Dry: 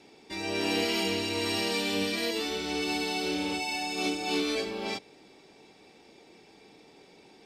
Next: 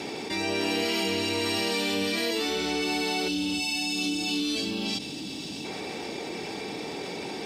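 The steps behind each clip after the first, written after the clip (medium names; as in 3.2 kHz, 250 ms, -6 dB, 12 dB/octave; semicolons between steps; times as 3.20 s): high-pass 69 Hz; time-frequency box 3.28–5.65 s, 330–2500 Hz -12 dB; level flattener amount 70%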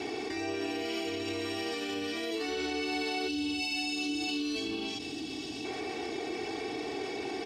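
treble shelf 7.4 kHz -12 dB; peak limiter -24.5 dBFS, peak gain reduction 7.5 dB; comb 2.7 ms, depth 78%; trim -3.5 dB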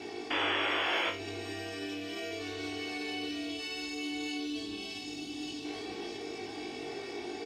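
on a send: delay 1190 ms -3.5 dB; on the sum: painted sound noise, 0.30–1.10 s, 260–3500 Hz -26 dBFS; flutter echo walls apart 3.4 m, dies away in 0.27 s; trim -7 dB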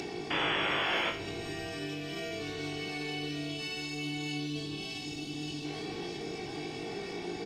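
octave divider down 1 oct, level -3 dB; upward compressor, threshold -35 dBFS; on a send at -14.5 dB: reverberation RT60 1.1 s, pre-delay 52 ms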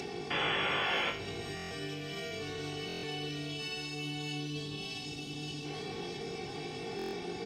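comb of notches 320 Hz; buffer glitch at 1.55/2.87/6.97 s, samples 1024, times 6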